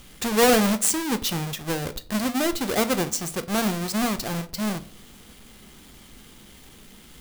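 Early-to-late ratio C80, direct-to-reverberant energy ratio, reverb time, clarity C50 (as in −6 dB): 22.5 dB, 11.0 dB, 0.45 s, 19.0 dB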